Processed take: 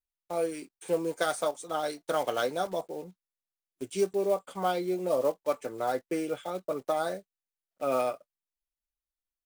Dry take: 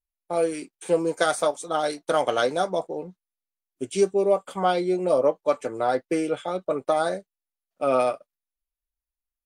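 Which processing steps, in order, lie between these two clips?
block-companded coder 5-bit; trim -6.5 dB

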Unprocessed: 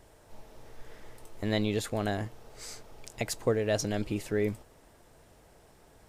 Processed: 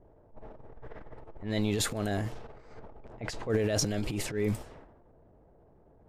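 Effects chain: transient shaper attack -11 dB, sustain +9 dB; level-controlled noise filter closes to 590 Hz, open at -28 dBFS

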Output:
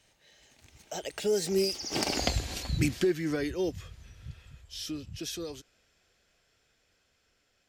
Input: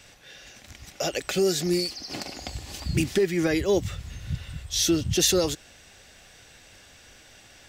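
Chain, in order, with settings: Doppler pass-by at 2.20 s, 30 m/s, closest 4.8 m; peaking EQ 430 Hz +3 dB 0.63 oct; trim +8.5 dB

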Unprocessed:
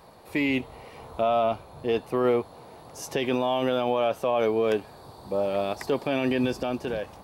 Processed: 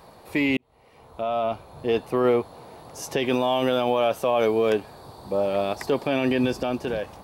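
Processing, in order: 0.57–1.93 s: fade in; 3.29–4.70 s: treble shelf 5.1 kHz +6.5 dB; trim +2.5 dB

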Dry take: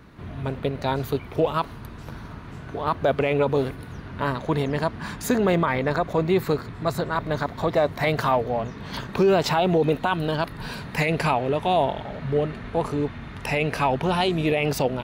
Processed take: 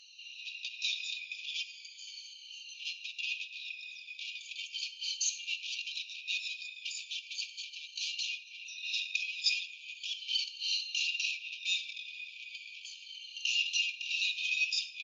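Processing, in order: drifting ripple filter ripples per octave 1.9, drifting -0.37 Hz, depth 21 dB; band-stop 3.3 kHz, Q 16; comb 3.6 ms, depth 79%; compression 6:1, threshold -19 dBFS, peak gain reduction 12 dB; saturation -24.5 dBFS, distortion -9 dB; brick-wall FIR band-pass 2.3–7.1 kHz; on a send at -6 dB: reverberation RT60 0.65 s, pre-delay 3 ms; on the sum: trim +3.5 dB; Opus 48 kbps 48 kHz

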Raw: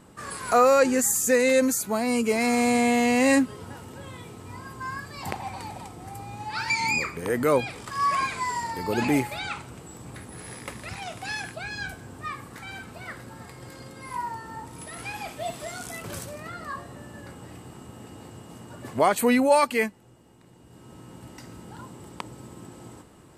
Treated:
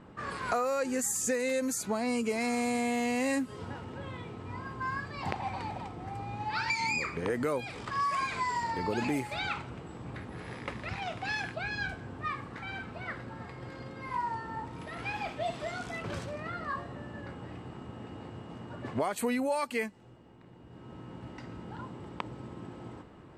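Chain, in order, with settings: level-controlled noise filter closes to 2.7 kHz, open at -17 dBFS; compression 6:1, threshold -28 dBFS, peak gain reduction 13.5 dB

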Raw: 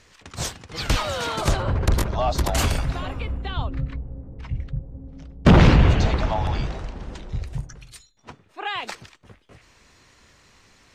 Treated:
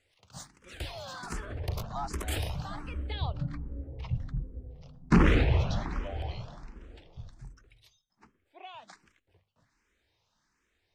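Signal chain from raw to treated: Doppler pass-by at 4.02 s, 37 m/s, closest 28 m; hum notches 50/100/150/200/250 Hz; barber-pole phaser +1.3 Hz

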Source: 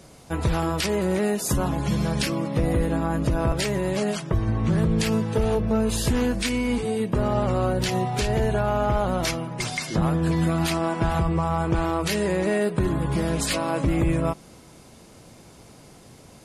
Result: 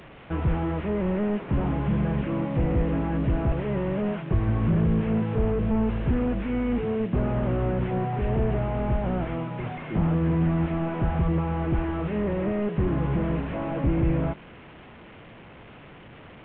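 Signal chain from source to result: one-bit delta coder 16 kbps, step -40.5 dBFS

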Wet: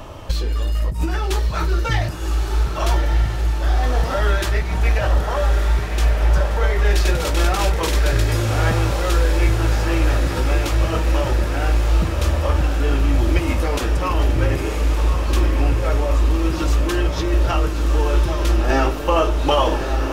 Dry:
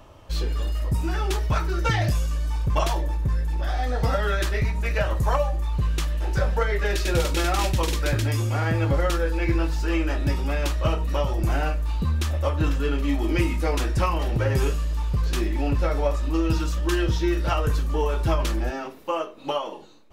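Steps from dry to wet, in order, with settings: peak limiter -16.5 dBFS, peak gain reduction 4.5 dB; compressor with a negative ratio -27 dBFS, ratio -0.5; on a send: echo that smears into a reverb 1199 ms, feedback 70%, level -5 dB; on the sum: trim +8.5 dB

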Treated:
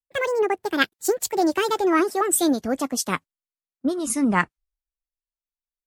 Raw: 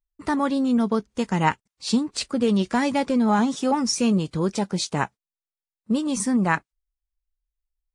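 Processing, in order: gliding tape speed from 188% -> 83%; three bands expanded up and down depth 70%

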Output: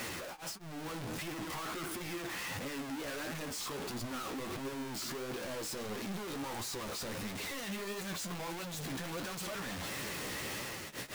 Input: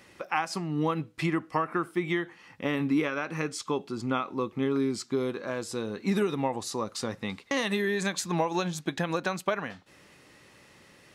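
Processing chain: one-bit comparator; level rider gain up to 13 dB; wavefolder -31.5 dBFS; flange 1.5 Hz, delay 7.2 ms, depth 9.4 ms, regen +38%; trim -3.5 dB

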